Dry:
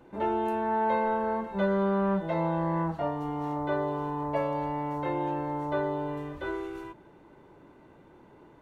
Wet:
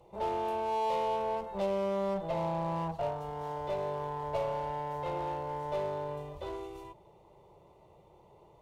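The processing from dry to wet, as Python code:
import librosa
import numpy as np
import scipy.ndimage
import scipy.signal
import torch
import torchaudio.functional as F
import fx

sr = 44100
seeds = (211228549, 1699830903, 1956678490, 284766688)

y = fx.clip_asym(x, sr, top_db=-30.5, bottom_db=-21.0)
y = fx.fixed_phaser(y, sr, hz=650.0, stages=4)
y = fx.cheby_harmonics(y, sr, harmonics=(8,), levels_db=(-28,), full_scale_db=-21.0)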